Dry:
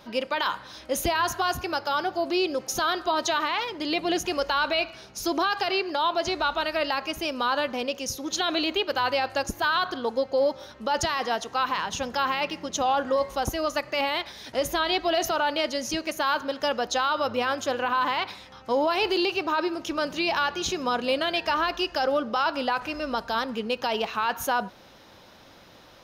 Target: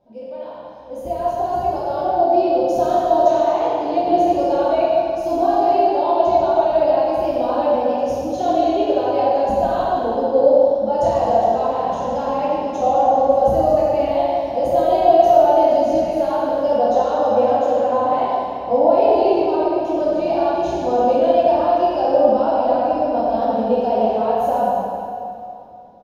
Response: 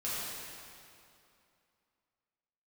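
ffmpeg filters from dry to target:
-filter_complex "[0:a]dynaudnorm=f=420:g=7:m=15dB,firequalizer=gain_entry='entry(420,0);entry(710,7);entry(1200,-19)':delay=0.05:min_phase=1[a];[1:a]atrim=start_sample=2205[b];[a][b]afir=irnorm=-1:irlink=0,volume=-8.5dB"

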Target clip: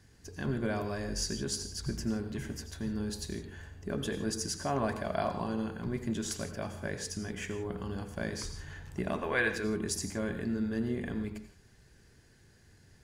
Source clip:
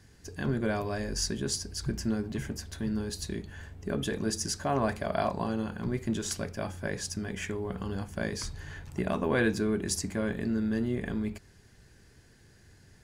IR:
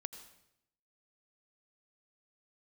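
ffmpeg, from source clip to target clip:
-filter_complex "[0:a]asettb=1/sr,asplit=3[a][b][c];[a]atrim=end=9.194[d];[b]atrim=start=9.19:end=9.64,asetpts=PTS-STARTPTS,afade=t=in:d=0.004:c=qsin,afade=t=out:st=0.446:d=0.004:c=qsin,equalizer=f=125:t=o:w=1:g=-6,equalizer=f=250:t=o:w=1:g=-9,equalizer=f=2k:t=o:w=1:g=7[e];[c]atrim=start=9.636[f];[d][e]acrossfade=d=0.004:c1=hsin:c2=qsin[g];[g][f]acrossfade=d=0.004:c1=qsin:c2=hsin[h];[1:a]atrim=start_sample=2205,afade=t=out:st=0.23:d=0.01,atrim=end_sample=10584[i];[h][i]afir=irnorm=-1:irlink=0"

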